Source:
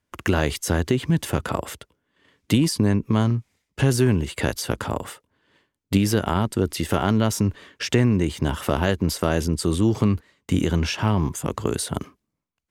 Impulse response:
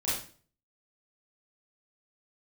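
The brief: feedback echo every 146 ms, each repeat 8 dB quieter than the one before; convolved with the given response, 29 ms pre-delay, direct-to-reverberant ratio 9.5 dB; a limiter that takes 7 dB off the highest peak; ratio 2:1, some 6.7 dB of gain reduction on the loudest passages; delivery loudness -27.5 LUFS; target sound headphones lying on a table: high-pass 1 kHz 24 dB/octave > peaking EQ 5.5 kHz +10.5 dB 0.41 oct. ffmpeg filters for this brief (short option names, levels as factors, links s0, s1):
-filter_complex "[0:a]acompressor=threshold=0.0447:ratio=2,alimiter=limit=0.141:level=0:latency=1,aecho=1:1:146|292|438|584|730:0.398|0.159|0.0637|0.0255|0.0102,asplit=2[s0][s1];[1:a]atrim=start_sample=2205,adelay=29[s2];[s1][s2]afir=irnorm=-1:irlink=0,volume=0.15[s3];[s0][s3]amix=inputs=2:normalize=0,highpass=f=1000:w=0.5412,highpass=f=1000:w=1.3066,equalizer=f=5500:t=o:w=0.41:g=10.5,volume=1.58"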